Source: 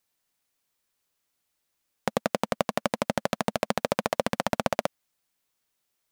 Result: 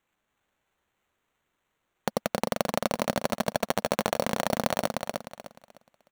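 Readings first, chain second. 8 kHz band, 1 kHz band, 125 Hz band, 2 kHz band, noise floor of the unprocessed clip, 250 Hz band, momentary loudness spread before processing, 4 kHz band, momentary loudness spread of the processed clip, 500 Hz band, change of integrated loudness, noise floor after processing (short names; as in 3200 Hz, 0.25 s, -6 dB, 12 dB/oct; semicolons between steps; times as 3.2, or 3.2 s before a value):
+3.0 dB, -0.5 dB, 0.0 dB, -0.5 dB, -79 dBFS, 0.0 dB, 3 LU, +1.0 dB, 9 LU, 0.0 dB, 0.0 dB, -80 dBFS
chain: sample-rate reducer 5000 Hz, jitter 0%; on a send: feedback echo 0.304 s, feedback 29%, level -4.5 dB; on the sum: gain -1.5 dB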